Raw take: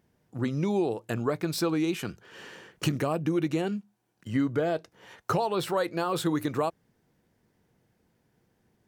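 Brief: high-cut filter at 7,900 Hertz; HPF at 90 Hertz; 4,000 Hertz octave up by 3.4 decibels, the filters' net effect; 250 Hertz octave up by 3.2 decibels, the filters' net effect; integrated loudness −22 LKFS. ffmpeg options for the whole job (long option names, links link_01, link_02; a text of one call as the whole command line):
ffmpeg -i in.wav -af "highpass=90,lowpass=7900,equalizer=frequency=250:width_type=o:gain=4.5,equalizer=frequency=4000:width_type=o:gain=4.5,volume=5.5dB" out.wav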